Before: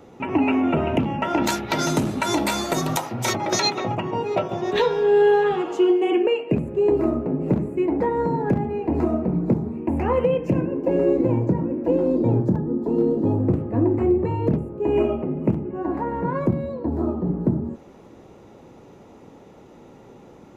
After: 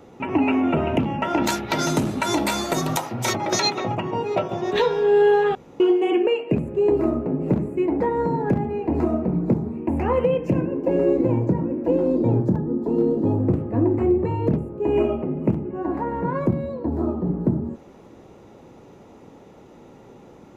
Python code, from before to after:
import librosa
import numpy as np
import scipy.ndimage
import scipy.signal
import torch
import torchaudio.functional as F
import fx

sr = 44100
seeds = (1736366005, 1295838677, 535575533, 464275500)

y = fx.edit(x, sr, fx.room_tone_fill(start_s=5.55, length_s=0.25), tone=tone)